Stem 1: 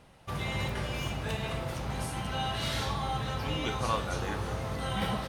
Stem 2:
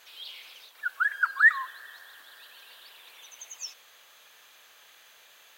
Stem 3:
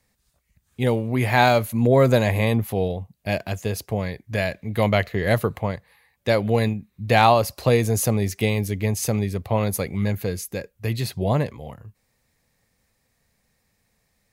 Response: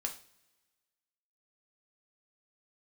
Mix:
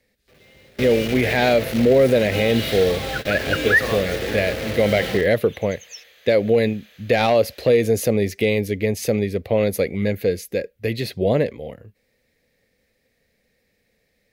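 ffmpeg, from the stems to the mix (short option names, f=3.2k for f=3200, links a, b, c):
-filter_complex "[0:a]dynaudnorm=f=110:g=5:m=4.5dB,acrusher=bits=4:mix=0:aa=0.000001,volume=-2.5dB[a];[1:a]adelay=2300,volume=-0.5dB[b];[2:a]asoftclip=type=hard:threshold=-9dB,volume=-1.5dB,asplit=2[c][d];[d]apad=whole_len=232884[e];[a][e]sidechaingate=range=-25dB:threshold=-54dB:ratio=16:detection=peak[f];[f][b][c]amix=inputs=3:normalize=0,equalizer=f=125:t=o:w=1:g=-3,equalizer=f=250:t=o:w=1:g=4,equalizer=f=500:t=o:w=1:g=12,equalizer=f=1k:t=o:w=1:g=-11,equalizer=f=2k:t=o:w=1:g=8,equalizer=f=4k:t=o:w=1:g=4,equalizer=f=8k:t=o:w=1:g=-5,alimiter=limit=-7.5dB:level=0:latency=1:release=54"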